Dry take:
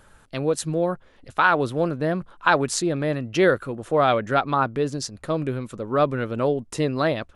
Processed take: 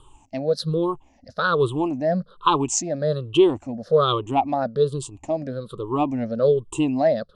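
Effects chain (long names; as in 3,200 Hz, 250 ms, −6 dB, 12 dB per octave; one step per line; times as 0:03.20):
rippled gain that drifts along the octave scale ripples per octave 0.65, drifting −1.2 Hz, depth 23 dB
low-pass filter 8,400 Hz 24 dB per octave
flat-topped bell 1,800 Hz −11.5 dB 1 octave
level −4 dB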